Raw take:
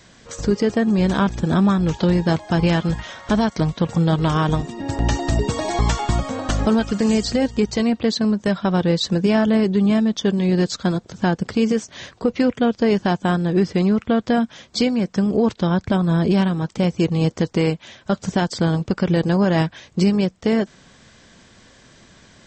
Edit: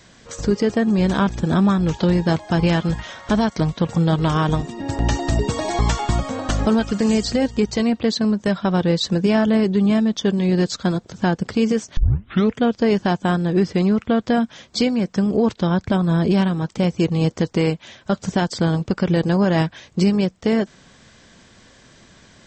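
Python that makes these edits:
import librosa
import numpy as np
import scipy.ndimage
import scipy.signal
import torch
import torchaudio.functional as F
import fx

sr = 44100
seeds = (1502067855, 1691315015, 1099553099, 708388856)

y = fx.edit(x, sr, fx.tape_start(start_s=11.97, length_s=0.58), tone=tone)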